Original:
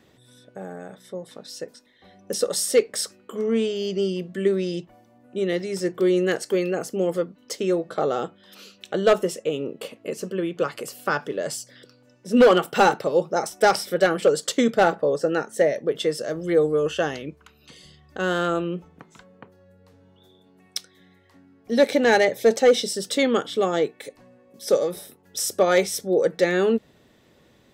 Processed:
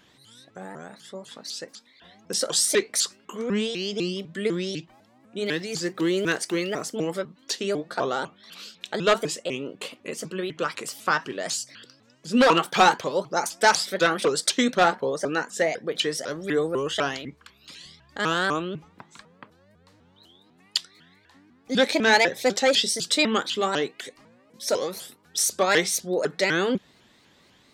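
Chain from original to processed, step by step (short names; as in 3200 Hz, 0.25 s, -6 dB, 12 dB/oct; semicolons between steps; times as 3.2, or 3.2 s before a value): 5.46–6.91 block floating point 7-bit; ten-band EQ 250 Hz +3 dB, 500 Hz -3 dB, 1000 Hz +7 dB, 2000 Hz +5 dB, 4000 Hz +9 dB, 8000 Hz +7 dB; shaped vibrato saw up 4 Hz, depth 250 cents; gain -5 dB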